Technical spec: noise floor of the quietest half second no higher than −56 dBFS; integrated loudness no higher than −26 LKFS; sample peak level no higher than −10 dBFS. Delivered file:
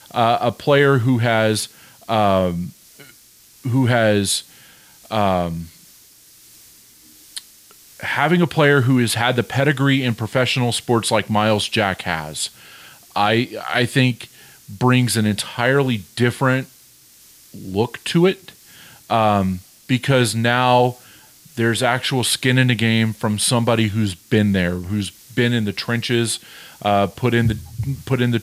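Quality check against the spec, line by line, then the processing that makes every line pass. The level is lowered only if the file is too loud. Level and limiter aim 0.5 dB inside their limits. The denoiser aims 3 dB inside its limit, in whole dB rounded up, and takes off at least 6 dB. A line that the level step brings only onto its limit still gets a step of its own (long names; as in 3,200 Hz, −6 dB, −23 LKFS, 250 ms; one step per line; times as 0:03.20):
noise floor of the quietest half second −49 dBFS: out of spec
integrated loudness −18.5 LKFS: out of spec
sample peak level −3.0 dBFS: out of spec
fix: level −8 dB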